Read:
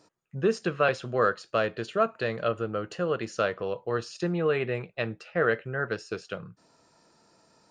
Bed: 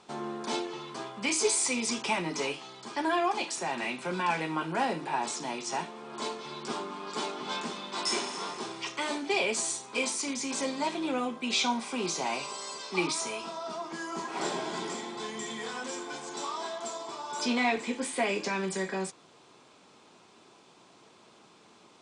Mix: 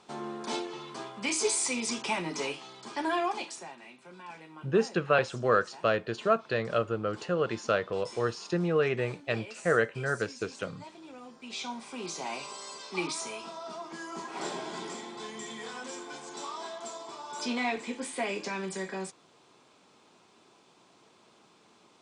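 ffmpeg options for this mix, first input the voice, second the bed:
-filter_complex "[0:a]adelay=4300,volume=0.944[s0];[1:a]volume=3.98,afade=t=out:st=3.21:d=0.56:silence=0.16788,afade=t=in:st=11.2:d=1.28:silence=0.211349[s1];[s0][s1]amix=inputs=2:normalize=0"

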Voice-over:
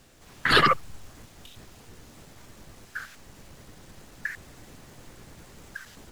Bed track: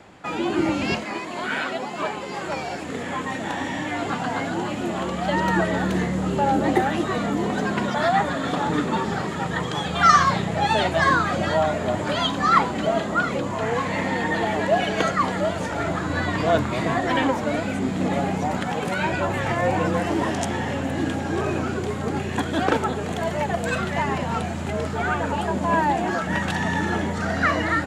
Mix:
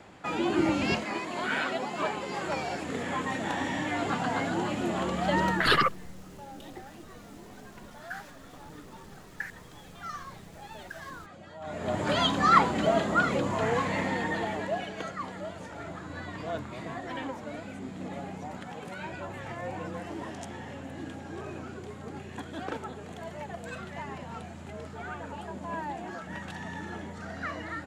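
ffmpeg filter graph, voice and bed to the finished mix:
-filter_complex "[0:a]adelay=5150,volume=0.631[s0];[1:a]volume=8.91,afade=t=out:st=5.44:d=0.25:silence=0.0841395,afade=t=in:st=11.6:d=0.52:silence=0.0749894,afade=t=out:st=13.57:d=1.37:silence=0.237137[s1];[s0][s1]amix=inputs=2:normalize=0"

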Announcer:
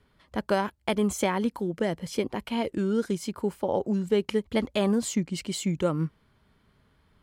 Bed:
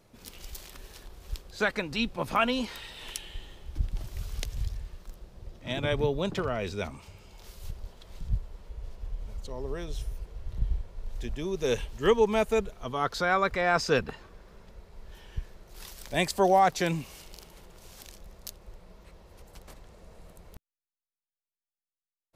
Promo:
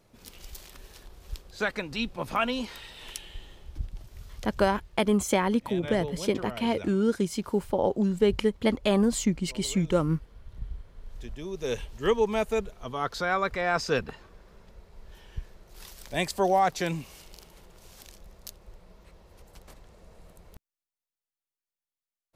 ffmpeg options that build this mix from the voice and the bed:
-filter_complex "[0:a]adelay=4100,volume=1.19[s0];[1:a]volume=1.88,afade=t=out:st=3.59:d=0.43:silence=0.446684,afade=t=in:st=10.72:d=1.42:silence=0.446684[s1];[s0][s1]amix=inputs=2:normalize=0"

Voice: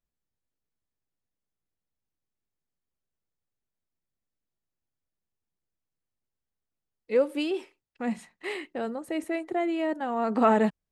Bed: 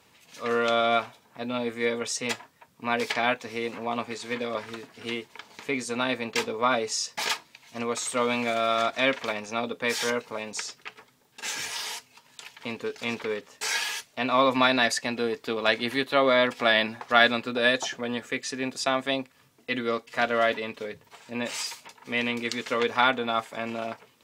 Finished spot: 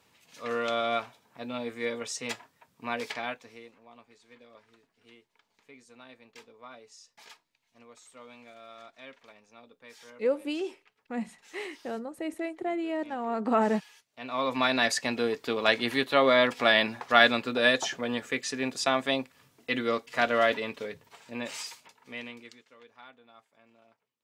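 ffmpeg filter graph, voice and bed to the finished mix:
-filter_complex "[0:a]adelay=3100,volume=0.668[s0];[1:a]volume=7.94,afade=t=out:st=2.86:d=0.89:silence=0.11885,afade=t=in:st=14.05:d=0.99:silence=0.0668344,afade=t=out:st=20.56:d=2.09:silence=0.0354813[s1];[s0][s1]amix=inputs=2:normalize=0"

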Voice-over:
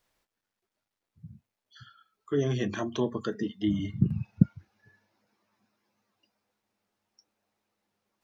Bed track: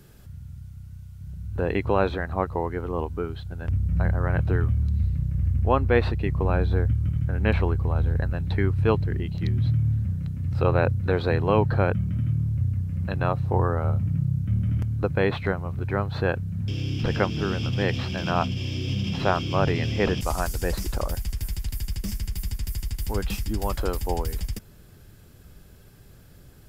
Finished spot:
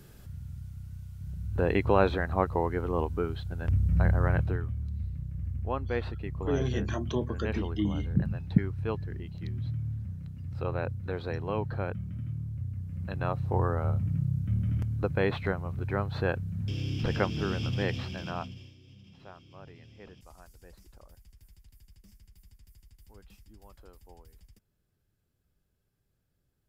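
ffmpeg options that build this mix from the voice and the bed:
-filter_complex "[0:a]adelay=4150,volume=0.75[s0];[1:a]volume=1.88,afade=t=out:st=4.26:d=0.36:silence=0.316228,afade=t=in:st=12.68:d=0.97:silence=0.473151,afade=t=out:st=17.72:d=1.03:silence=0.0749894[s1];[s0][s1]amix=inputs=2:normalize=0"

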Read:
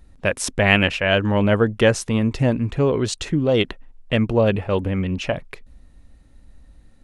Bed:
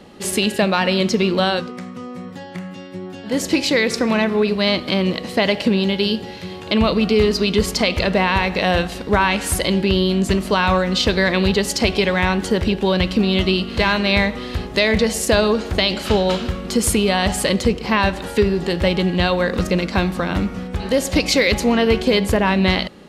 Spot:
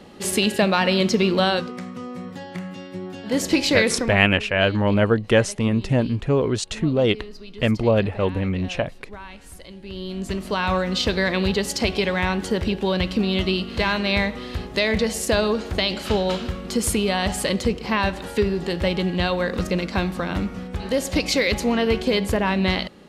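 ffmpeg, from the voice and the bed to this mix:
-filter_complex "[0:a]adelay=3500,volume=0.891[s0];[1:a]volume=7.08,afade=t=out:st=3.89:d=0.3:silence=0.0841395,afade=t=in:st=9.81:d=0.99:silence=0.11885[s1];[s0][s1]amix=inputs=2:normalize=0"

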